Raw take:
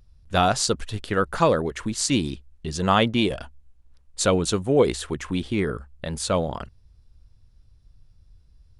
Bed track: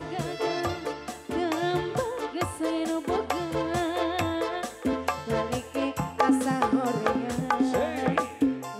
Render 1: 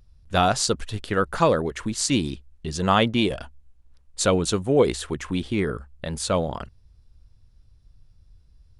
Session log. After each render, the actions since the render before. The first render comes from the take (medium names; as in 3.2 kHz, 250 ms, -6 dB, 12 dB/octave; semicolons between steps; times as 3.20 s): no audible change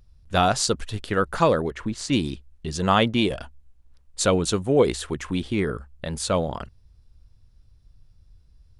1.71–2.13 s: low-pass 2.3 kHz 6 dB/octave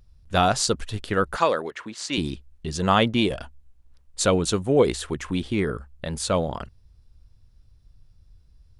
1.36–2.18 s: frequency weighting A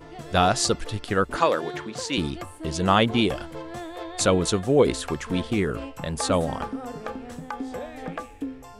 add bed track -8.5 dB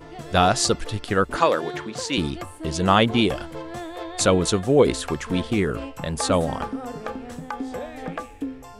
trim +2 dB